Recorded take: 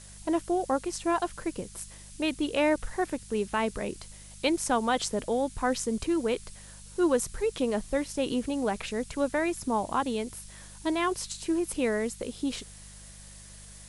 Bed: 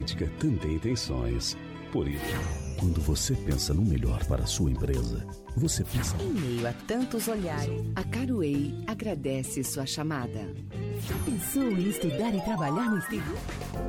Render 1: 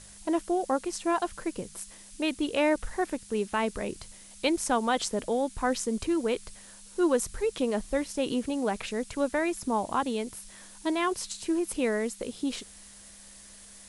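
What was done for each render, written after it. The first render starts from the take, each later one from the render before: de-hum 50 Hz, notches 3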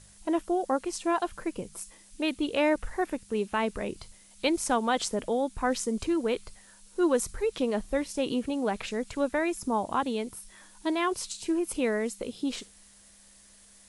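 noise print and reduce 6 dB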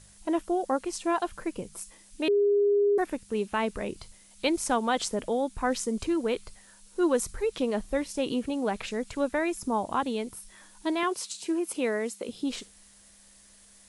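2.28–2.98 bleep 407 Hz -19.5 dBFS; 11.03–12.29 HPF 220 Hz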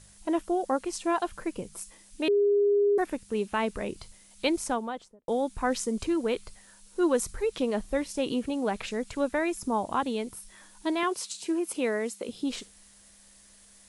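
4.46–5.28 studio fade out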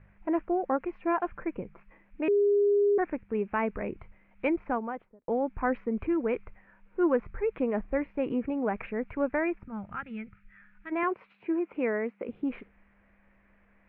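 Chebyshev low-pass 2400 Hz, order 5; 9.64–10.92 spectral gain 220–1200 Hz -17 dB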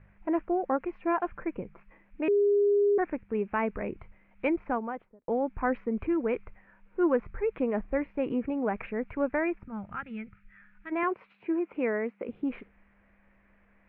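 nothing audible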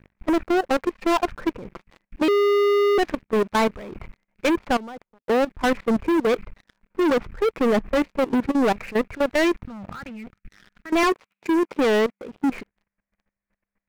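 sample leveller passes 5; level quantiser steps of 18 dB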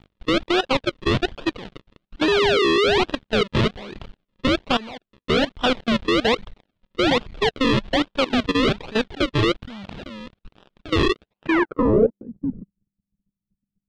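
decimation with a swept rate 40×, swing 100% 1.2 Hz; low-pass sweep 3500 Hz -> 180 Hz, 11.37–12.34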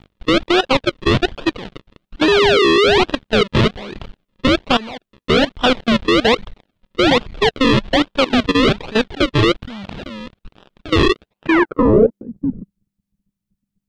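gain +5.5 dB; limiter -3 dBFS, peak gain reduction 1 dB

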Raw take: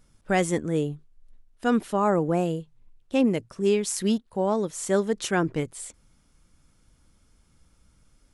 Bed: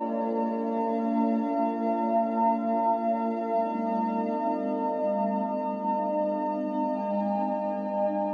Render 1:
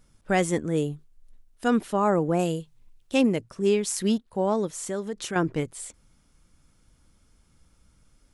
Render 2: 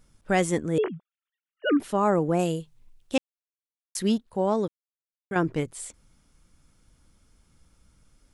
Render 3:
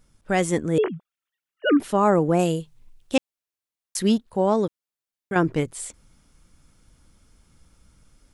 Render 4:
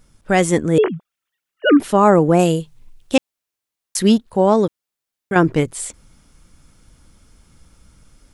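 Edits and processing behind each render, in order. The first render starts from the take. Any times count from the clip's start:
0.77–1.68 high shelf 5700 Hz +7.5 dB; 2.39–3.27 high shelf 2600 Hz +9 dB; 4.68–5.36 compressor 2:1, threshold -32 dBFS
0.78–1.8 sine-wave speech; 3.18–3.95 mute; 4.68–5.31 mute
AGC gain up to 4 dB
gain +6.5 dB; limiter -1 dBFS, peak gain reduction 1 dB

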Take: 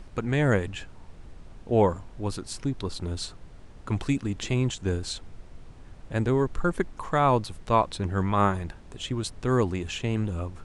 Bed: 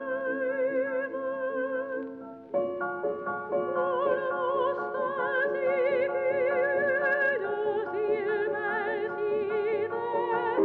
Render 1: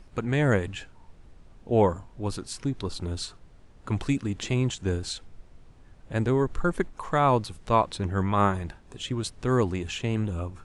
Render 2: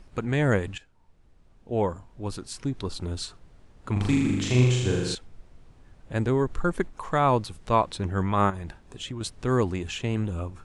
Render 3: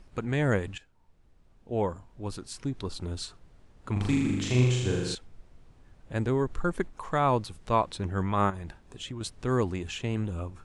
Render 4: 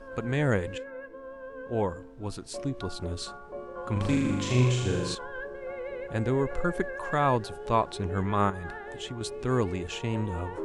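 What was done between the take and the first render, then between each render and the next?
noise print and reduce 6 dB
0.78–2.84 fade in, from -14 dB; 3.92–5.15 flutter echo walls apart 6.9 m, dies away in 1.2 s; 8.5–9.21 compressor, threshold -30 dBFS
gain -3 dB
add bed -11 dB

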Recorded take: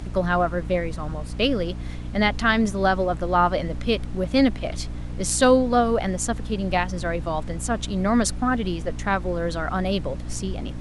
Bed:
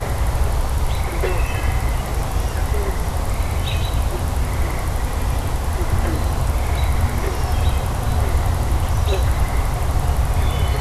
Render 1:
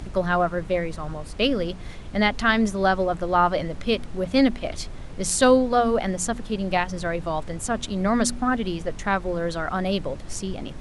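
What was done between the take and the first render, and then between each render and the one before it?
de-hum 60 Hz, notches 5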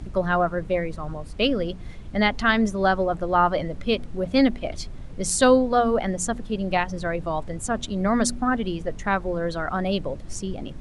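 denoiser 7 dB, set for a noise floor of -37 dBFS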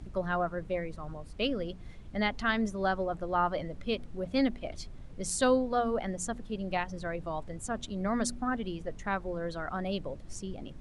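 gain -9 dB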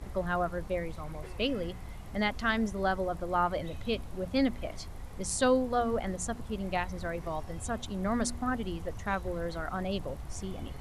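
add bed -25 dB

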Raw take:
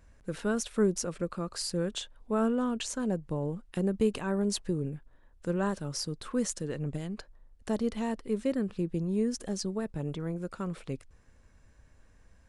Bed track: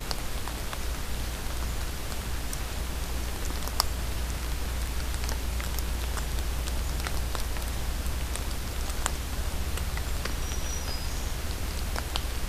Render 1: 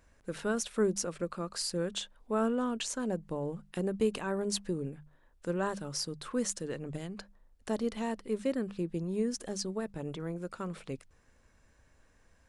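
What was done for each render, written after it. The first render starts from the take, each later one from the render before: low shelf 220 Hz -6.5 dB; notches 50/100/150/200 Hz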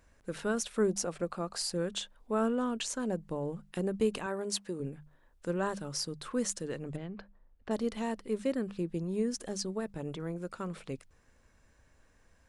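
0.89–1.74 bell 750 Hz +8.5 dB 0.42 oct; 4.26–4.8 HPF 360 Hz 6 dB/oct; 6.96–7.71 air absorption 310 m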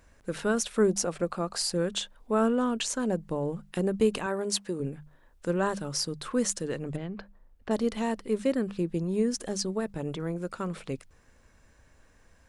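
gain +5 dB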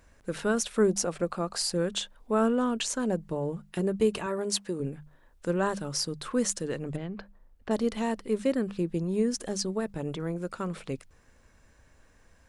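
3.28–4.38 notch comb 260 Hz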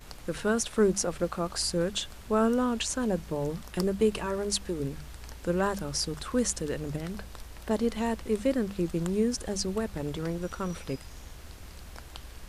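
add bed track -13.5 dB

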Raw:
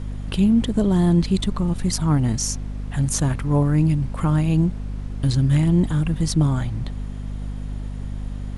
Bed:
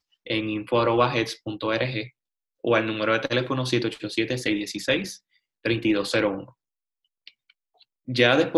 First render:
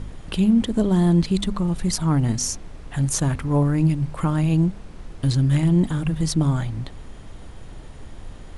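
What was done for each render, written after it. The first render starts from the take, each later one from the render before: de-hum 50 Hz, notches 5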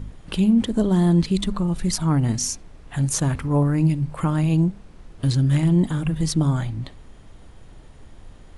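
noise print and reduce 6 dB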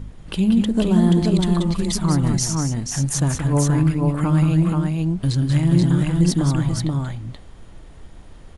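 tapped delay 0.182/0.188/0.48 s -9/-10.5/-3 dB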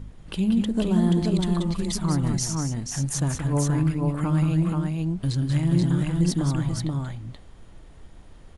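gain -5 dB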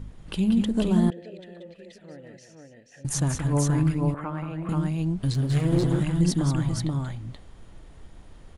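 1.1–3.05 vowel filter e; 4.14–4.69 three-band isolator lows -13 dB, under 420 Hz, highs -21 dB, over 2400 Hz; 5.34–6 minimum comb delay 8 ms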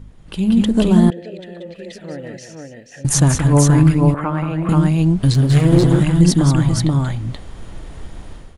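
AGC gain up to 14 dB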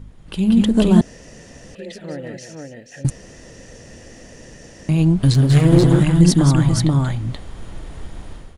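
1.01–1.75 room tone; 3.1–4.89 room tone

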